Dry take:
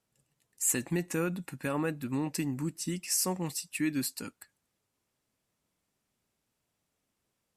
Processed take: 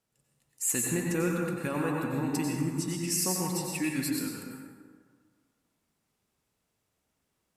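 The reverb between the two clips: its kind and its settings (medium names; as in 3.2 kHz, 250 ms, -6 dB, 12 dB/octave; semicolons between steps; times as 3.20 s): plate-style reverb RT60 1.7 s, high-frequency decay 0.5×, pre-delay 80 ms, DRR -1.5 dB; trim -1 dB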